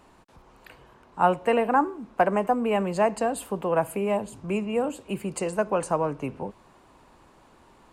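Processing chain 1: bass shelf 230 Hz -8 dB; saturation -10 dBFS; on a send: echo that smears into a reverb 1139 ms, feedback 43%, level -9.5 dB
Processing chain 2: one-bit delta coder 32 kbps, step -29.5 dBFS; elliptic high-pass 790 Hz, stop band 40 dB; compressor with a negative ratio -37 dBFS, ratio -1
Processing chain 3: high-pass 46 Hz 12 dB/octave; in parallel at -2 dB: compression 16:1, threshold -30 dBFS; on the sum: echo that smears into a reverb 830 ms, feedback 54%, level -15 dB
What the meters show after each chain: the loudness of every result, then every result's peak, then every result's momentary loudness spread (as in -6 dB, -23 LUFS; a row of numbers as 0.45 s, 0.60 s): -28.0 LUFS, -35.0 LUFS, -24.0 LUFS; -11.5 dBFS, -22.0 dBFS, -7.0 dBFS; 13 LU, 3 LU, 18 LU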